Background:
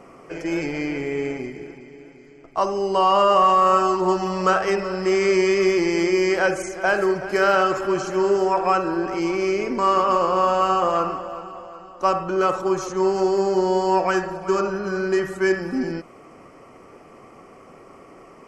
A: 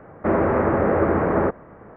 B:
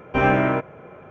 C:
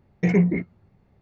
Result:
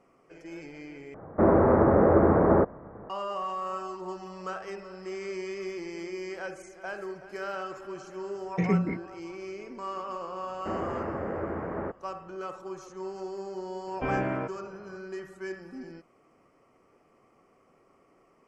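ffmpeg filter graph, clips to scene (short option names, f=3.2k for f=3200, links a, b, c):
-filter_complex "[1:a]asplit=2[a][b];[0:a]volume=-17.5dB[c];[a]lowpass=1.2k[d];[2:a]aemphasis=mode=reproduction:type=75kf[e];[c]asplit=2[f][g];[f]atrim=end=1.144[h];[d]atrim=end=1.96,asetpts=PTS-STARTPTS,volume=-0.5dB[i];[g]atrim=start=3.096[j];[3:a]atrim=end=1.21,asetpts=PTS-STARTPTS,volume=-6.5dB,afade=t=in:d=0.004:c=hsin,afade=t=out:st=1.206:d=0.004:c=hsin,adelay=8350[k];[b]atrim=end=1.96,asetpts=PTS-STARTPTS,volume=-14dB,afade=t=in:d=0.004:c=hsin,afade=t=out:st=1.956:d=0.004:c=hsin,adelay=10410[l];[e]atrim=end=1.1,asetpts=PTS-STARTPTS,volume=-10dB,afade=t=in:d=0.004:c=hsin,afade=t=out:st=1.096:d=0.004:c=hsin,adelay=13870[m];[h][i]acrossfade=d=0.004:c1=hsin:c2=hsin[n];[n][j]acrossfade=d=0.004:c1=hsin:c2=hsin[o];[o][k][l][m]amix=inputs=4:normalize=0"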